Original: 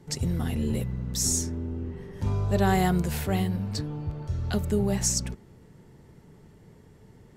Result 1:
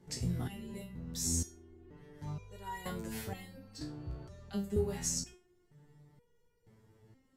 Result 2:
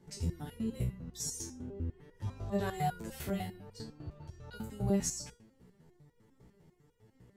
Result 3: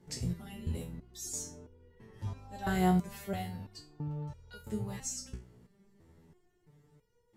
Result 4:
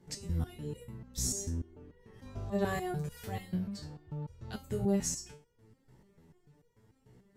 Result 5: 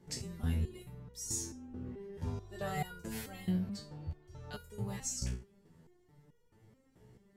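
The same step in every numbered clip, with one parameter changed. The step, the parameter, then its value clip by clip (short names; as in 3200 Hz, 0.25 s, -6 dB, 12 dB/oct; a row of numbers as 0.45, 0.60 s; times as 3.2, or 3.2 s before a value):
stepped resonator, rate: 2.1, 10, 3, 6.8, 4.6 Hz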